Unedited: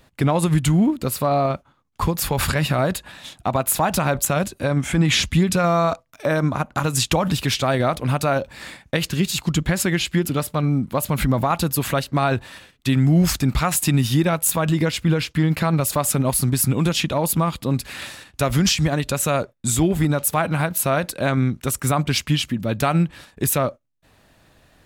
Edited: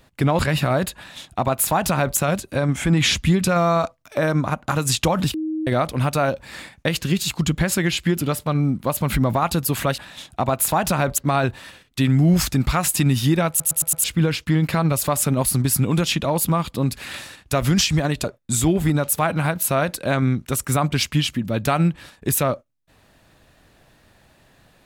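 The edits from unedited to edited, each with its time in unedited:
0:00.39–0:02.47: remove
0:03.05–0:04.25: duplicate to 0:12.06
0:07.42–0:07.75: beep over 314 Hz −22 dBFS
0:14.37: stutter in place 0.11 s, 5 plays
0:19.12–0:19.39: remove

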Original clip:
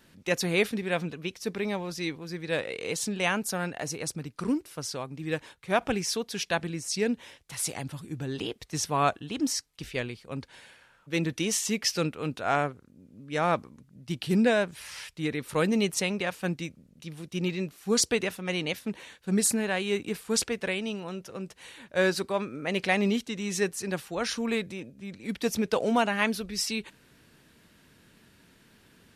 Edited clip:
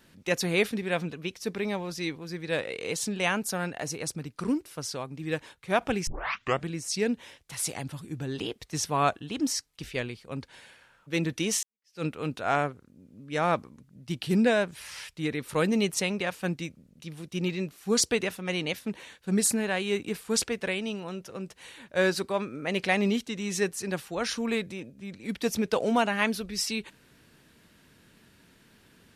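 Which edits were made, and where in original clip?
0:06.07: tape start 0.60 s
0:11.63–0:12.04: fade in exponential

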